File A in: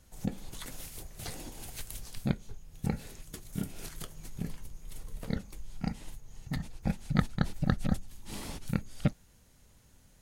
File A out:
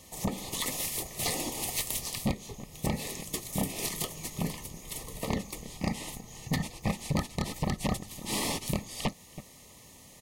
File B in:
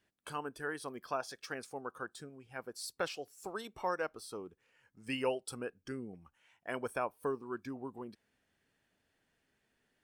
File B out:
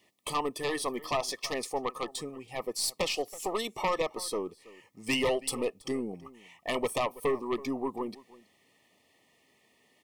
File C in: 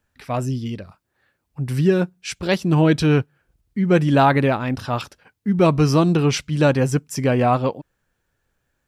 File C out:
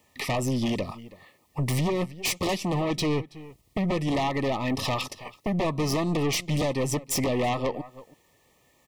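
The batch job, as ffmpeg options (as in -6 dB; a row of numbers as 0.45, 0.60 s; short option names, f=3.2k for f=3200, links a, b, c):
-filter_complex "[0:a]highpass=f=290:p=1,acompressor=threshold=-32dB:ratio=10,aeval=exprs='(tanh(25.1*val(0)+0.8)-tanh(0.8))/25.1':c=same,asplit=2[a][b];[b]adelay=326.5,volume=-21dB,highshelf=f=4k:g=-7.35[c];[a][c]amix=inputs=2:normalize=0,aeval=exprs='0.0562*sin(PI/2*3.55*val(0)/0.0562)':c=same,asuperstop=centerf=1500:order=20:qfactor=3.2,volume=3.5dB"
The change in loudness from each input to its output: +3.5, +8.0, -8.0 LU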